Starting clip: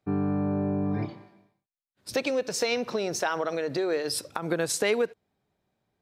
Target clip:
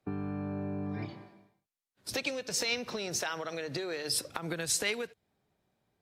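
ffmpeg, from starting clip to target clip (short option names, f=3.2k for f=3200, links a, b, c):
-filter_complex "[0:a]acrossover=split=140|1800[a][b][c];[a]alimiter=level_in=14.5dB:limit=-24dB:level=0:latency=1,volume=-14.5dB[d];[b]acompressor=threshold=-36dB:ratio=6[e];[d][e][c]amix=inputs=3:normalize=0" -ar 44100 -c:a aac -b:a 64k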